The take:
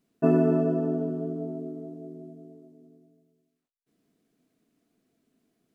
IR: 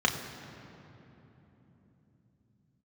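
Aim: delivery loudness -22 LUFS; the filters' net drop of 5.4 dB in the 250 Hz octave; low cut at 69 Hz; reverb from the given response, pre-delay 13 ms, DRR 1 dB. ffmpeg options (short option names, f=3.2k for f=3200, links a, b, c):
-filter_complex "[0:a]highpass=69,equalizer=f=250:t=o:g=-7,asplit=2[a][b];[1:a]atrim=start_sample=2205,adelay=13[c];[b][c]afir=irnorm=-1:irlink=0,volume=-13.5dB[d];[a][d]amix=inputs=2:normalize=0,volume=9dB"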